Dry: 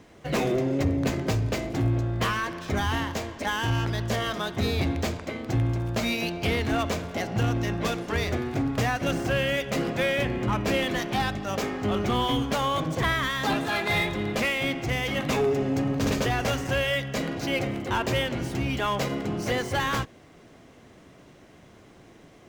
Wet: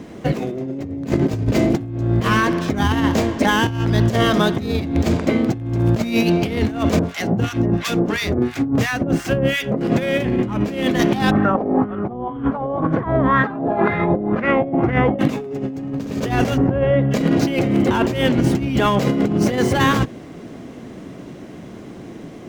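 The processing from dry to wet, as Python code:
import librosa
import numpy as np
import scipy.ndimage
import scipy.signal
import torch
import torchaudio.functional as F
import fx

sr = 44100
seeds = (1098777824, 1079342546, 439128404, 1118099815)

y = fx.harmonic_tremolo(x, sr, hz=2.9, depth_pct=100, crossover_hz=1200.0, at=(6.99, 9.81))
y = fx.filter_lfo_lowpass(y, sr, shape='sine', hz=2.0, low_hz=640.0, high_hz=1600.0, q=3.0, at=(11.31, 15.19))
y = fx.lowpass(y, sr, hz=1000.0, slope=12, at=(16.56, 17.1), fade=0.02)
y = fx.peak_eq(y, sr, hz=230.0, db=10.5, octaves=2.2)
y = fx.hum_notches(y, sr, base_hz=50, count=3)
y = fx.over_compress(y, sr, threshold_db=-23.0, ratio=-0.5)
y = y * 10.0 ** (5.5 / 20.0)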